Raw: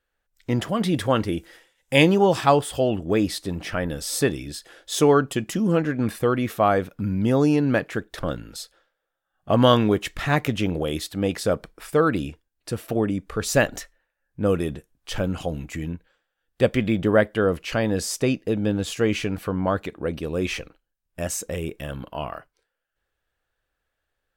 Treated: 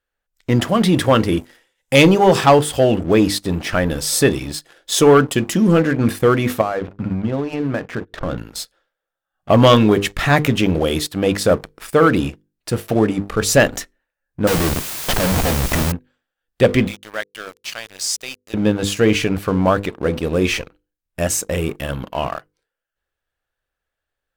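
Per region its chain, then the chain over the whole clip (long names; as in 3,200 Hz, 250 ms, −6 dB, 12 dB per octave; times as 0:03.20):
0:06.61–0:08.38: mains-hum notches 50/100/150/200/250/300/350/400/450/500 Hz + downward compressor 5 to 1, threshold −25 dBFS + high-frequency loss of the air 270 metres
0:14.47–0:15.92: parametric band 700 Hz +7 dB 0.88 octaves + comparator with hysteresis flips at −30.5 dBFS + bit-depth reduction 6 bits, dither triangular
0:16.87–0:18.54: resonant band-pass 5,500 Hz, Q 0.92 + centre clipping without the shift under −40 dBFS
whole clip: mains-hum notches 50/100/150/200/250/300/350/400/450/500 Hz; leveller curve on the samples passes 2; level +1 dB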